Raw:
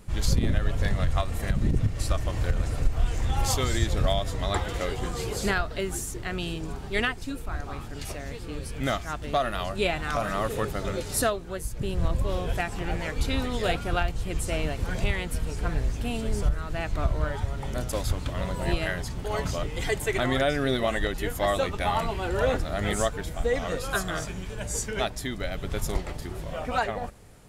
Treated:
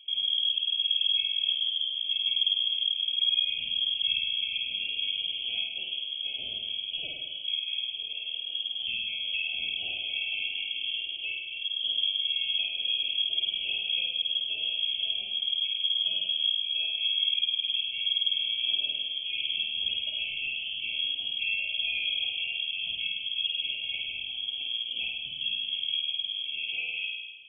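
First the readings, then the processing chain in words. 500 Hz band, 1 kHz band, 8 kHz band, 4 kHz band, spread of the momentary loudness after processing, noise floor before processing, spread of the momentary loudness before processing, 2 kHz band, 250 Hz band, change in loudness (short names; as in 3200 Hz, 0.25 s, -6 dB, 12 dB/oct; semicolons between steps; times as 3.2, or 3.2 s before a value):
under -30 dB, under -30 dB, under -40 dB, +13.5 dB, 7 LU, -37 dBFS, 7 LU, -1.5 dB, under -25 dB, +1.5 dB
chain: FFT band-reject 1100–2500 Hz; compressor 6:1, threshold -26 dBFS, peak gain reduction 10 dB; air absorption 330 m; fixed phaser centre 810 Hz, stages 4; flutter echo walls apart 8.8 m, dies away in 1.2 s; inverted band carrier 3300 Hz; gain -3 dB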